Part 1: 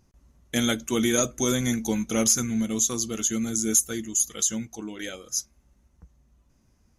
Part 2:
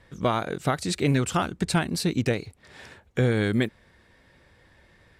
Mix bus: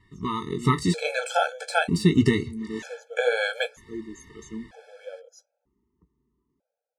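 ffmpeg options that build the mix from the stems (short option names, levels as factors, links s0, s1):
-filter_complex "[0:a]bandpass=f=450:t=q:w=1.4:csg=0,volume=0.398[s0];[1:a]lowpass=f=11000:w=0.5412,lowpass=f=11000:w=1.3066,deesser=0.7,flanger=delay=9.9:depth=9.1:regen=-45:speed=0.5:shape=triangular,volume=1.12,asplit=2[s1][s2];[s2]apad=whole_len=307965[s3];[s0][s3]sidechaincompress=threshold=0.0178:ratio=8:attack=26:release=369[s4];[s4][s1]amix=inputs=2:normalize=0,dynaudnorm=f=100:g=11:m=3.55,afftfilt=real='re*gt(sin(2*PI*0.53*pts/sr)*(1-2*mod(floor(b*sr/1024/440),2)),0)':imag='im*gt(sin(2*PI*0.53*pts/sr)*(1-2*mod(floor(b*sr/1024/440),2)),0)':win_size=1024:overlap=0.75"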